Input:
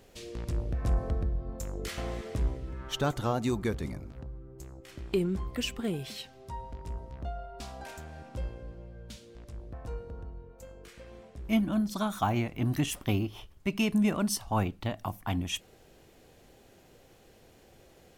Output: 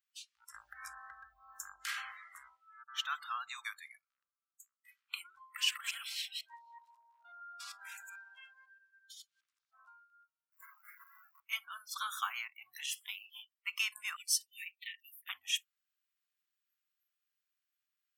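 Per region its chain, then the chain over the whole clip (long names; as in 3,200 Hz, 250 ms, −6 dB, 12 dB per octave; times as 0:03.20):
0:00.54–0:02.12: low-shelf EQ 240 Hz +11.5 dB + hollow resonant body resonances 210/790/1,600 Hz, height 14 dB, ringing for 95 ms + multiband upward and downward compressor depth 70%
0:02.83–0:03.65: high-shelf EQ 5,500 Hz −9 dB + all-pass dispersion highs, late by 55 ms, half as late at 320 Hz
0:05.41–0:09.82: delay that plays each chunk backwards 125 ms, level −0.5 dB + high-pass filter 100 Hz + echo through a band-pass that steps 165 ms, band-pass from 730 Hz, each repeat 1.4 octaves, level −11 dB
0:10.52–0:11.40: each half-wave held at its own peak + Butterworth band-reject 3,500 Hz, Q 2.1
0:12.47–0:13.30: dynamic equaliser 4,500 Hz, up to +6 dB, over −52 dBFS, Q 1.4 + tuned comb filter 97 Hz, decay 1.4 s, mix 50%
0:14.16–0:15.29: Chebyshev high-pass with heavy ripple 1,800 Hz, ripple 3 dB + comb filter 5.6 ms, depth 73%
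whole clip: noise reduction from a noise print of the clip's start 29 dB; elliptic high-pass filter 1,200 Hz, stop band 60 dB; level +1 dB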